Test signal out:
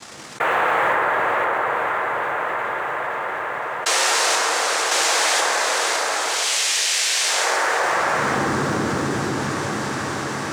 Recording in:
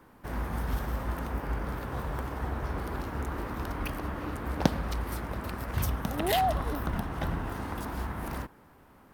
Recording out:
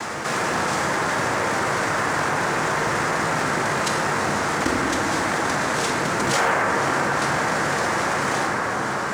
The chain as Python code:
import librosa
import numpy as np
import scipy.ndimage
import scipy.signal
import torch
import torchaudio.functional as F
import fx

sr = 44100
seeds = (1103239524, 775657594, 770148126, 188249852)

p1 = fx.highpass(x, sr, hz=720.0, slope=6)
p2 = fx.rider(p1, sr, range_db=3, speed_s=0.5)
p3 = p1 + F.gain(torch.from_numpy(p2), -0.5).numpy()
p4 = fx.dmg_crackle(p3, sr, seeds[0], per_s=520.0, level_db=-57.0)
p5 = fx.noise_vocoder(p4, sr, seeds[1], bands=3)
p6 = fx.quant_float(p5, sr, bits=4)
p7 = p6 + fx.echo_diffused(p6, sr, ms=498, feedback_pct=66, wet_db=-13.0, dry=0)
p8 = fx.rev_plate(p7, sr, seeds[2], rt60_s=2.9, hf_ratio=0.25, predelay_ms=0, drr_db=-1.0)
y = fx.env_flatten(p8, sr, amount_pct=70)